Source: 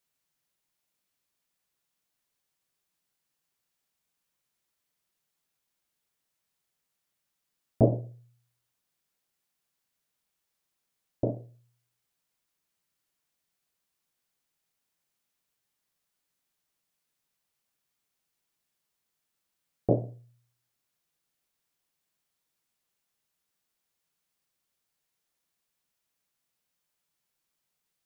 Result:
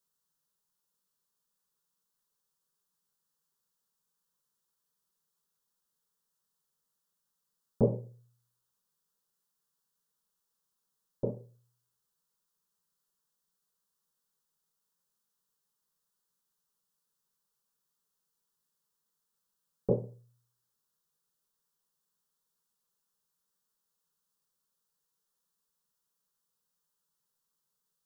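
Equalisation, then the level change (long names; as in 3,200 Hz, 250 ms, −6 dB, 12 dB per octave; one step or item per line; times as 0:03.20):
phaser with its sweep stopped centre 450 Hz, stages 8
0.0 dB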